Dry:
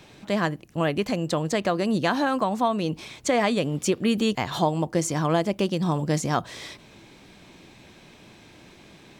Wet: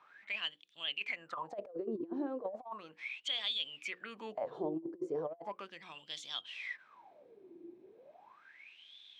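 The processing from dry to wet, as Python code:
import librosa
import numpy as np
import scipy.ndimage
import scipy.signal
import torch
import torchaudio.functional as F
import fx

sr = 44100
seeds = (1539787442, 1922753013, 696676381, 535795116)

y = fx.low_shelf(x, sr, hz=210.0, db=-2.0)
y = fx.hum_notches(y, sr, base_hz=60, count=9)
y = fx.wah_lfo(y, sr, hz=0.36, low_hz=340.0, high_hz=3500.0, q=19.0)
y = fx.over_compress(y, sr, threshold_db=-43.0, ratio=-0.5)
y = y * librosa.db_to_amplitude(5.5)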